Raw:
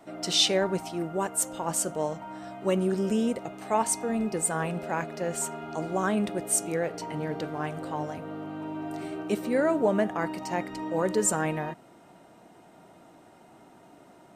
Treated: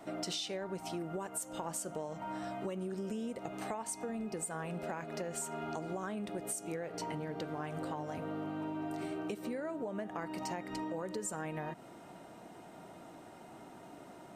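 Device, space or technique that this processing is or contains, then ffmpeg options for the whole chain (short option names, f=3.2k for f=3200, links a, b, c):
serial compression, peaks first: -af "acompressor=threshold=-34dB:ratio=6,acompressor=threshold=-38dB:ratio=3,volume=1.5dB"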